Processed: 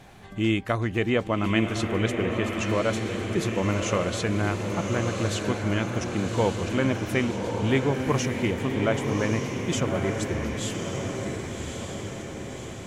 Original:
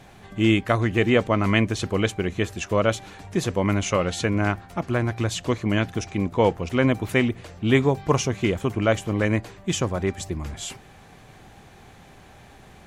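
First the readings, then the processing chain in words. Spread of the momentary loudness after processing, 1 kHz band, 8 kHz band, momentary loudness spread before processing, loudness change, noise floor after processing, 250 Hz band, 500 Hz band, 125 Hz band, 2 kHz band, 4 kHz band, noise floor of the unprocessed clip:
8 LU, -2.5 dB, -1.5 dB, 8 LU, -3.0 dB, -37 dBFS, -2.0 dB, -2.5 dB, -2.0 dB, -2.5 dB, -2.0 dB, -49 dBFS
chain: in parallel at -1 dB: compressor, threshold -29 dBFS, peak gain reduction 15.5 dB; on the sum: diffused feedback echo 1.144 s, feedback 58%, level -4 dB; gain -6.5 dB

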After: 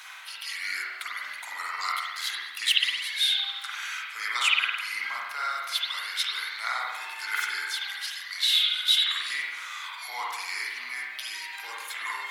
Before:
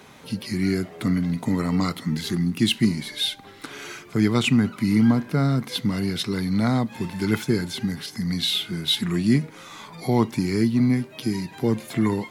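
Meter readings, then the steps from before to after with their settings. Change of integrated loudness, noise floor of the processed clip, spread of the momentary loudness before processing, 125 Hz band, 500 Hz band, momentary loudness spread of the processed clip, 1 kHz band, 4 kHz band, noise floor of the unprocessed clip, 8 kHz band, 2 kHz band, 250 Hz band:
-4.0 dB, -40 dBFS, 9 LU, under -40 dB, -24.5 dB, 13 LU, 0.0 dB, +3.0 dB, -46 dBFS, 0.0 dB, +5.5 dB, under -40 dB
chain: HPF 1200 Hz 24 dB/oct; reverse; upward compressor, threshold -37 dBFS; reverse; spring tank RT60 1.1 s, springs 45 ms, chirp 65 ms, DRR -4.5 dB

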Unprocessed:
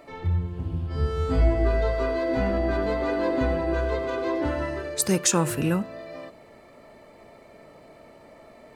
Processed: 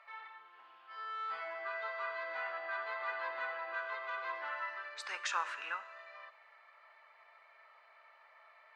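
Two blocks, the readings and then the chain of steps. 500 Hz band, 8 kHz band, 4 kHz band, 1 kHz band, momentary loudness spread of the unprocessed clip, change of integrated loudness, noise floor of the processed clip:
-20.5 dB, -24.5 dB, -11.5 dB, -7.0 dB, 9 LU, -14.5 dB, -63 dBFS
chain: HPF 1200 Hz 24 dB/oct; tape spacing loss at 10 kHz 43 dB; Schroeder reverb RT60 1.5 s, combs from 31 ms, DRR 16.5 dB; gain +5 dB

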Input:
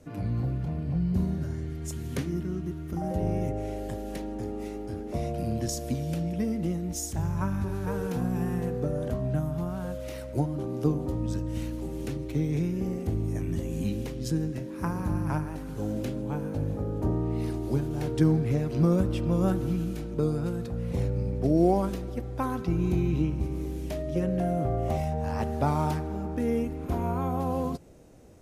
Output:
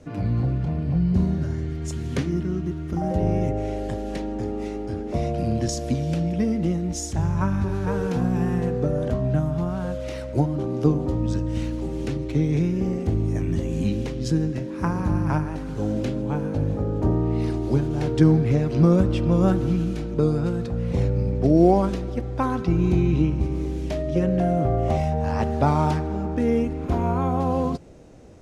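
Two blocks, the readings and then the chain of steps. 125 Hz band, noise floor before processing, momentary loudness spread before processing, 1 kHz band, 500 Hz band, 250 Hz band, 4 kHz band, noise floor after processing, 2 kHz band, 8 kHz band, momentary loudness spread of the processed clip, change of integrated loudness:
+6.0 dB, -37 dBFS, 9 LU, +6.0 dB, +6.0 dB, +6.0 dB, +5.5 dB, -31 dBFS, +6.0 dB, +2.5 dB, 9 LU, +6.0 dB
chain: LPF 6600 Hz 12 dB/oct; gain +6 dB

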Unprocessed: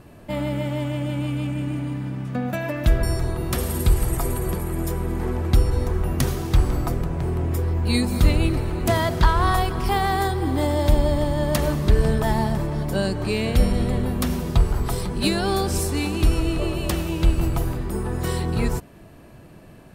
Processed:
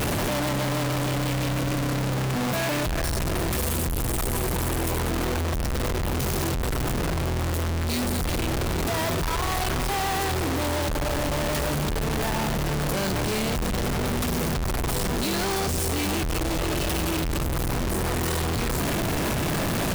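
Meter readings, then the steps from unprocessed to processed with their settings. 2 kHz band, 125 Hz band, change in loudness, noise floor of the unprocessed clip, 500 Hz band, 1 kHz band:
+2.0 dB, -4.0 dB, -2.5 dB, -45 dBFS, -2.0 dB, -1.5 dB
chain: infinite clipping; gain -4 dB

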